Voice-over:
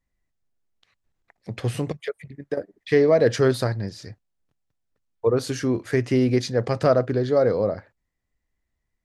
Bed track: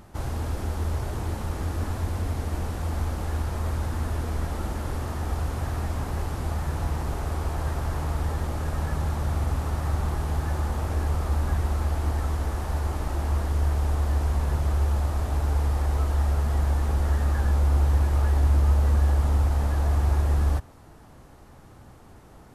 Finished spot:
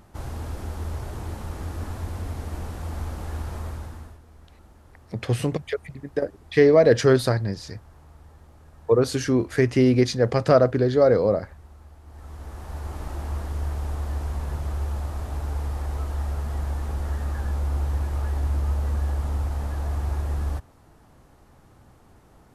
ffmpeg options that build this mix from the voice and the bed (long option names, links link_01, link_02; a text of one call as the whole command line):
ffmpeg -i stem1.wav -i stem2.wav -filter_complex "[0:a]adelay=3650,volume=2dB[link_01];[1:a]volume=14dB,afade=type=out:start_time=3.55:duration=0.64:silence=0.11885,afade=type=in:start_time=12.06:duration=0.98:silence=0.133352[link_02];[link_01][link_02]amix=inputs=2:normalize=0" out.wav